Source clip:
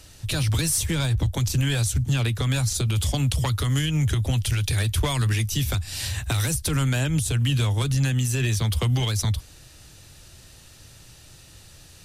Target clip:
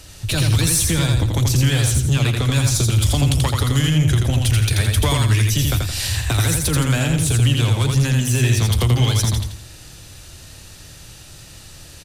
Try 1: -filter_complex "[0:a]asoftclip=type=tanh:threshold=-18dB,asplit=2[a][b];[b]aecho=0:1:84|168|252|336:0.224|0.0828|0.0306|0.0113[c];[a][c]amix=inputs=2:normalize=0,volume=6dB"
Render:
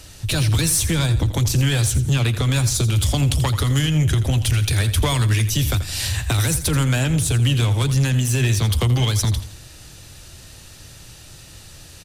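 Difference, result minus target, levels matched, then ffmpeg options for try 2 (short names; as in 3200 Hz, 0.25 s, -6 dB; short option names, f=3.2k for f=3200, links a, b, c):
echo-to-direct -9.5 dB
-filter_complex "[0:a]asoftclip=type=tanh:threshold=-18dB,asplit=2[a][b];[b]aecho=0:1:84|168|252|336|420:0.668|0.247|0.0915|0.0339|0.0125[c];[a][c]amix=inputs=2:normalize=0,volume=6dB"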